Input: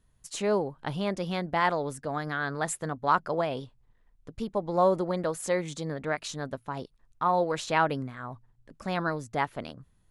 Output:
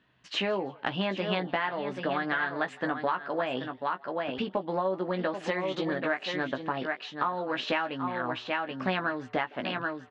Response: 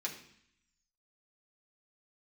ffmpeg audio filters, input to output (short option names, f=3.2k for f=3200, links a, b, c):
-filter_complex "[0:a]highpass=220,equalizer=f=280:t=q:w=4:g=3,equalizer=f=460:t=q:w=4:g=-4,equalizer=f=1.7k:t=q:w=4:g=6,equalizer=f=2.8k:t=q:w=4:g=8,lowpass=f=3.9k:w=0.5412,lowpass=f=3.9k:w=1.3066,asplit=2[a][b];[b]aecho=0:1:781:0.299[c];[a][c]amix=inputs=2:normalize=0,acompressor=threshold=-34dB:ratio=10,asplit=2[d][e];[e]adelay=16,volume=-6.5dB[f];[d][f]amix=inputs=2:normalize=0,asplit=2[g][h];[h]asplit=2[i][j];[i]adelay=163,afreqshift=120,volume=-24dB[k];[j]adelay=326,afreqshift=240,volume=-33.4dB[l];[k][l]amix=inputs=2:normalize=0[m];[g][m]amix=inputs=2:normalize=0,volume=7.5dB"